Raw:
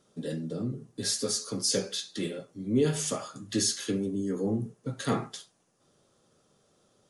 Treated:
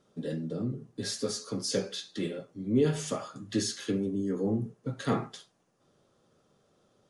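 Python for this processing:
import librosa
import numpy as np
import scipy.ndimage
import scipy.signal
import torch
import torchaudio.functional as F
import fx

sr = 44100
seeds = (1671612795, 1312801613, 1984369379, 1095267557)

y = fx.lowpass(x, sr, hz=3200.0, slope=6)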